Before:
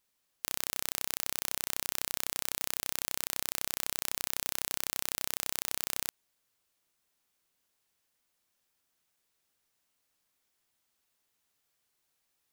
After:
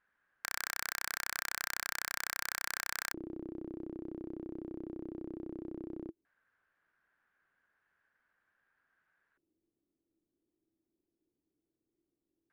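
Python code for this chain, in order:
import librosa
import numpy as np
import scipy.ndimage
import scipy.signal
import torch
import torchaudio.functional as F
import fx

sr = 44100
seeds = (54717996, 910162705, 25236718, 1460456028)

y = fx.filter_lfo_lowpass(x, sr, shape='square', hz=0.16, low_hz=330.0, high_hz=1600.0, q=7.8)
y = (np.mod(10.0 ** (23.5 / 20.0) * y + 1.0, 2.0) - 1.0) / 10.0 ** (23.5 / 20.0)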